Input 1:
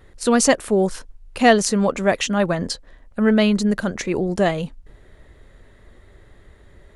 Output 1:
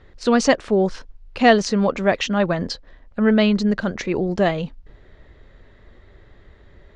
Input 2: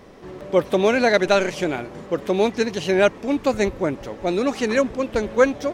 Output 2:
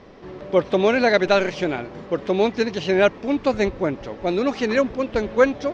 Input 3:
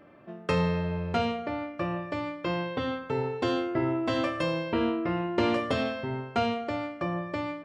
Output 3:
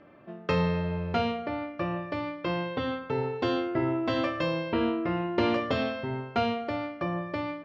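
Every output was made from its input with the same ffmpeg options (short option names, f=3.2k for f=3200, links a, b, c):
-af "lowpass=f=5.5k:w=0.5412,lowpass=f=5.5k:w=1.3066"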